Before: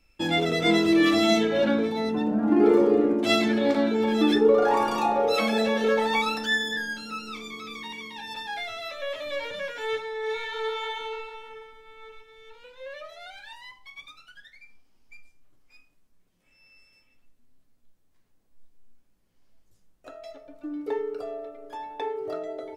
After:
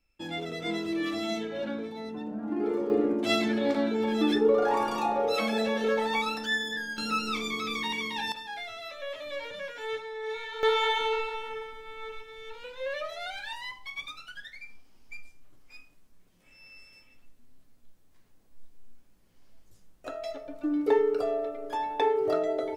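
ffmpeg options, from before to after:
ffmpeg -i in.wav -af "asetnsamples=nb_out_samples=441:pad=0,asendcmd='2.9 volume volume -4dB;6.98 volume volume 6dB;8.32 volume volume -5dB;10.63 volume volume 6dB',volume=-11dB" out.wav

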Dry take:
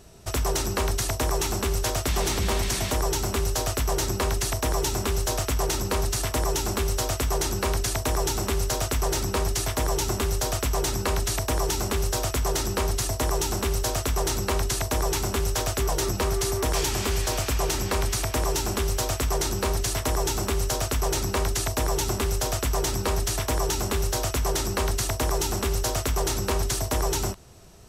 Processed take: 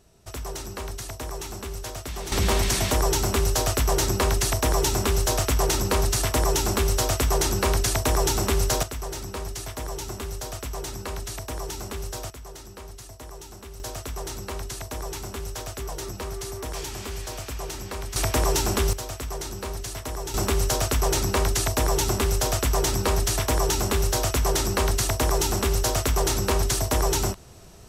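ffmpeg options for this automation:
ffmpeg -i in.wav -af "asetnsamples=nb_out_samples=441:pad=0,asendcmd='2.32 volume volume 3dB;8.83 volume volume -7.5dB;12.3 volume volume -16dB;13.8 volume volume -8dB;18.16 volume volume 3dB;18.93 volume volume -7dB;20.34 volume volume 2.5dB',volume=-8.5dB" out.wav

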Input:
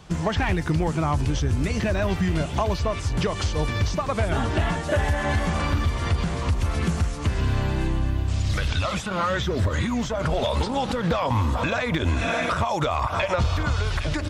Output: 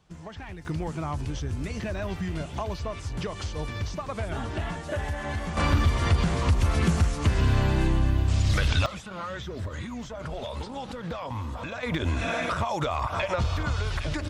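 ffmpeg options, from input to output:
ffmpeg -i in.wav -af "asetnsamples=nb_out_samples=441:pad=0,asendcmd='0.65 volume volume -8dB;5.57 volume volume 1dB;8.86 volume volume -11dB;11.83 volume volume -4dB',volume=-17dB" out.wav

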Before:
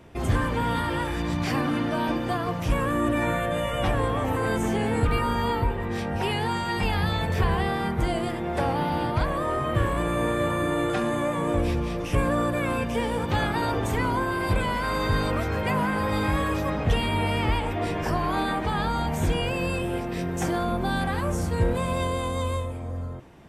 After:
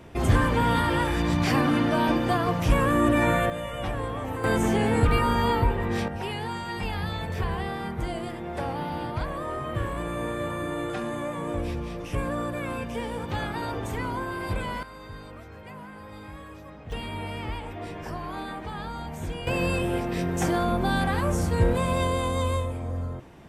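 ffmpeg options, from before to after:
ffmpeg -i in.wav -af "asetnsamples=nb_out_samples=441:pad=0,asendcmd='3.5 volume volume -6dB;4.44 volume volume 2dB;6.08 volume volume -5.5dB;14.83 volume volume -17.5dB;16.92 volume volume -9dB;19.47 volume volume 1.5dB',volume=3dB" out.wav

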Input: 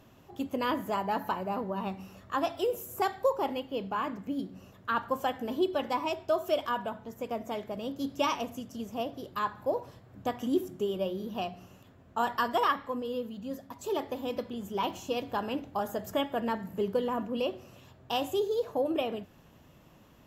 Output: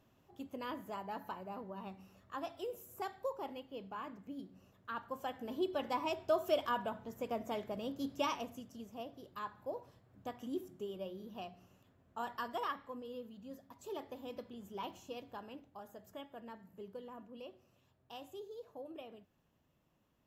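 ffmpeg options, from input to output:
ffmpeg -i in.wav -af "volume=-4dB,afade=type=in:start_time=5.09:duration=1.22:silence=0.375837,afade=type=out:start_time=7.66:duration=1.26:silence=0.398107,afade=type=out:start_time=14.82:duration=0.9:silence=0.446684" out.wav

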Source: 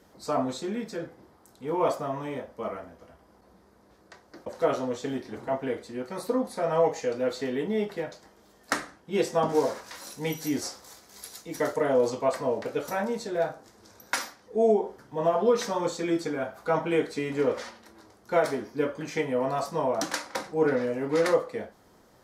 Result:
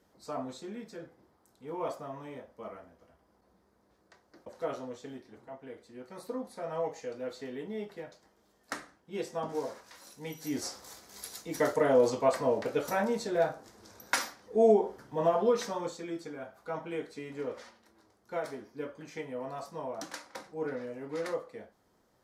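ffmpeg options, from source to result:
ffmpeg -i in.wav -af "volume=7dB,afade=type=out:start_time=4.74:duration=0.82:silence=0.421697,afade=type=in:start_time=5.56:duration=0.64:silence=0.446684,afade=type=in:start_time=10.36:duration=0.48:silence=0.316228,afade=type=out:start_time=15.02:duration=1.05:silence=0.281838" out.wav

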